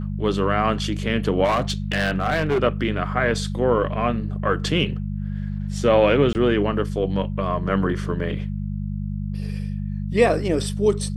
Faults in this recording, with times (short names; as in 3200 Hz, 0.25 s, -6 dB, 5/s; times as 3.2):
hum 50 Hz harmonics 4 -27 dBFS
1.44–2.58 clipped -16 dBFS
6.33–6.35 gap 19 ms